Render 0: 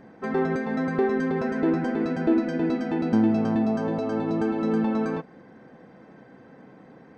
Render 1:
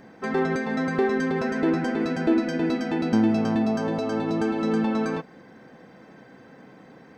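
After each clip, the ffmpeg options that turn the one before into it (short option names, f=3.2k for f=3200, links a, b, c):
-af "highshelf=f=2.3k:g=10"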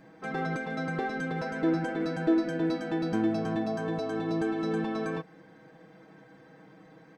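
-af "aecho=1:1:6.3:0.93,volume=-8dB"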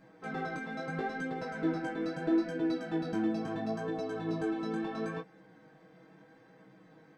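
-af "flanger=delay=15.5:depth=6.7:speed=0.75,volume=-1.5dB"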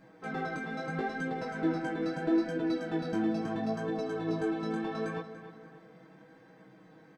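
-filter_complex "[0:a]asplit=2[a][b];[b]adelay=289,lowpass=f=4.6k:p=1,volume=-12dB,asplit=2[c][d];[d]adelay=289,lowpass=f=4.6k:p=1,volume=0.44,asplit=2[e][f];[f]adelay=289,lowpass=f=4.6k:p=1,volume=0.44,asplit=2[g][h];[h]adelay=289,lowpass=f=4.6k:p=1,volume=0.44[i];[a][c][e][g][i]amix=inputs=5:normalize=0,volume=1.5dB"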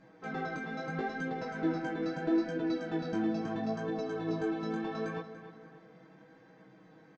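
-af "aresample=16000,aresample=44100,volume=-1.5dB"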